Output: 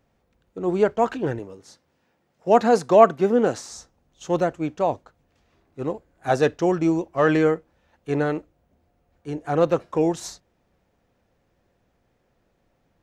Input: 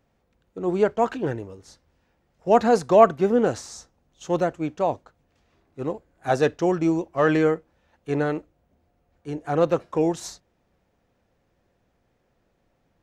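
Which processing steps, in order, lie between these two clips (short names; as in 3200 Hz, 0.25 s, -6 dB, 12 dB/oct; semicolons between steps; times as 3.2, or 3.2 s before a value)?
1.39–3.71 HPF 140 Hz 12 dB/oct; gain +1 dB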